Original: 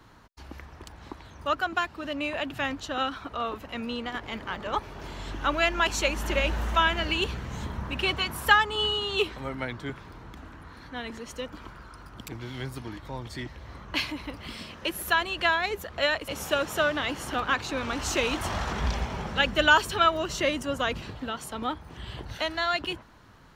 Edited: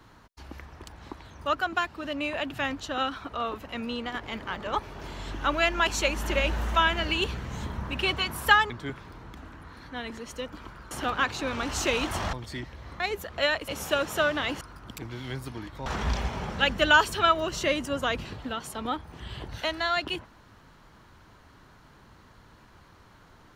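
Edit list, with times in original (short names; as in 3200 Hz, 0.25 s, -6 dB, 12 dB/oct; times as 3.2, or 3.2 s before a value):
8.7–9.7 cut
11.91–13.16 swap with 17.21–18.63
13.83–15.6 cut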